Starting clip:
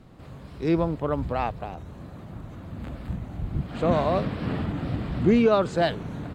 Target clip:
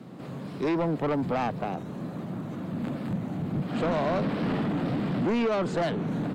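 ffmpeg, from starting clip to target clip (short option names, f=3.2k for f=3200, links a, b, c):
-filter_complex "[0:a]highpass=f=160:w=0.5412,highpass=f=160:w=1.3066,lowshelf=f=410:g=8,acrossover=split=400|3800[a][b][c];[a]acompressor=threshold=-27dB:ratio=4[d];[b]acompressor=threshold=-25dB:ratio=4[e];[c]acompressor=threshold=-52dB:ratio=4[f];[d][e][f]amix=inputs=3:normalize=0,asoftclip=type=tanh:threshold=-26.5dB,volume=4dB"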